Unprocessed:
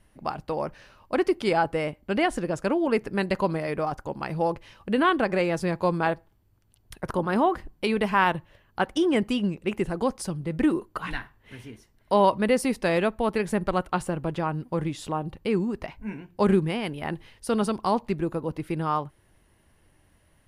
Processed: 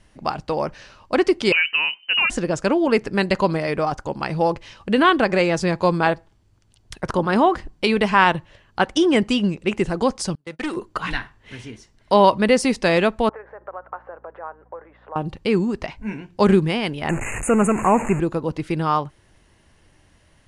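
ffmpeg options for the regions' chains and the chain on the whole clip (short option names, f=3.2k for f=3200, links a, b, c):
-filter_complex "[0:a]asettb=1/sr,asplit=3[a][b][c];[a]atrim=end=1.524[d];[b]atrim=start=1.52:end=2.3,asetpts=PTS-STARTPTS,afade=t=in:d=0.004:c=qsin,afade=t=out:st=0.776:d=0.004:c=qsin,acompressor=threshold=-25dB:ratio=2:attack=3.2:release=140:knee=1:detection=peak,lowpass=f=2.6k:t=q:w=0.5098,lowpass=f=2.6k:t=q:w=0.6013,lowpass=f=2.6k:t=q:w=0.9,lowpass=f=2.6k:t=q:w=2.563,afreqshift=-3100[e];[c]atrim=start=2.296[f];[d][e]acrossfade=d=0.004:c1=hsin:c2=qsin[g];[g][f]acrossfade=d=0.004:c1=qsin:c2=hsin,asettb=1/sr,asplit=3[h][i][j];[h]atrim=end=10.354[k];[i]atrim=start=10.35:end=10.77,asetpts=PTS-STARTPTS,afade=t=in:d=0.004:c=qsin,afade=t=out:st=0.416:d=0.004:c=qsin,highpass=f=920:p=1,agate=range=-24dB:threshold=-45dB:ratio=16:release=100:detection=peak,aeval=exprs='clip(val(0),-1,0.0316)':c=same[l];[j]atrim=start=10.766[m];[k][l]acrossfade=d=0.004:c1=hsin:c2=qsin[n];[n][m]acrossfade=d=0.004:c1=qsin:c2=hsin,asettb=1/sr,asplit=3[o][p][q];[o]atrim=end=13.294[r];[p]atrim=start=13.29:end=15.16,asetpts=PTS-STARTPTS,afade=t=in:d=0.004:c=qsin,afade=t=out:st=1.866:d=0.004:c=qsin,acompressor=threshold=-32dB:ratio=8:attack=3.2:release=140:knee=1:detection=peak,asuperpass=centerf=890:order=8:qfactor=0.72,aeval=exprs='val(0)+0.000891*(sin(2*PI*60*n/s)+sin(2*PI*2*60*n/s)/2+sin(2*PI*3*60*n/s)/3+sin(2*PI*4*60*n/s)/4+sin(2*PI*5*60*n/s)/5)':c=same[s];[q]atrim=start=15.156[t];[r][s]acrossfade=d=0.004:c1=hsin:c2=qsin[u];[u][t]acrossfade=d=0.004:c1=qsin:c2=hsin,asettb=1/sr,asplit=3[v][w][x];[v]atrim=end=17.094[y];[w]atrim=start=17.09:end=18.2,asetpts=PTS-STARTPTS,afade=t=in:d=0.004:c=qsin,afade=t=out:st=1.106:d=0.004:c=qsin,aeval=exprs='val(0)+0.5*0.0422*sgn(val(0))':c=same,asuperstop=centerf=4300:order=20:qfactor=1.1[z];[x]atrim=start=18.196[aa];[y][z]acrossfade=d=0.004:c1=hsin:c2=qsin[ab];[ab][aa]acrossfade=d=0.004:c1=qsin:c2=hsin,lowpass=f=7.6k:w=0.5412,lowpass=f=7.6k:w=1.3066,highshelf=f=4.1k:g=9,volume=5.5dB"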